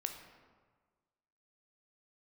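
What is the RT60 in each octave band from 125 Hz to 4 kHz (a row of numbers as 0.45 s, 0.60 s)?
1.6 s, 1.5 s, 1.5 s, 1.5 s, 1.2 s, 0.85 s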